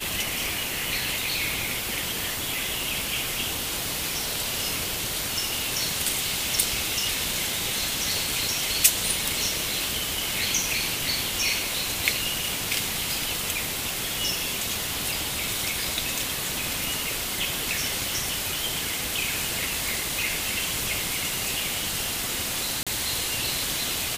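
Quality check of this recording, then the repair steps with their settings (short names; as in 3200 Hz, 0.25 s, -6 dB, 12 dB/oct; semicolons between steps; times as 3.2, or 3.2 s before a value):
22.83–22.87 gap 36 ms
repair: interpolate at 22.83, 36 ms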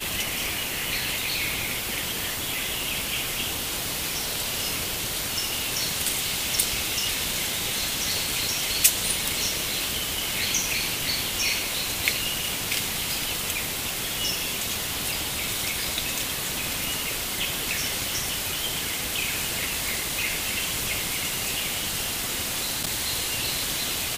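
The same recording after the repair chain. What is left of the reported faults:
none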